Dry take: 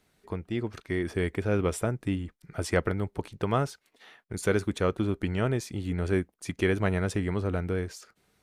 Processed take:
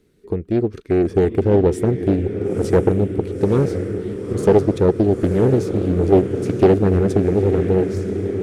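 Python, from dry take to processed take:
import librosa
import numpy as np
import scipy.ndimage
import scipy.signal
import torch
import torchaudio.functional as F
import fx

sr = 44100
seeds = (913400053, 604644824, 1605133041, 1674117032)

y = fx.low_shelf_res(x, sr, hz=550.0, db=9.0, q=3.0)
y = fx.echo_diffused(y, sr, ms=949, feedback_pct=60, wet_db=-7.5)
y = fx.doppler_dist(y, sr, depth_ms=0.45)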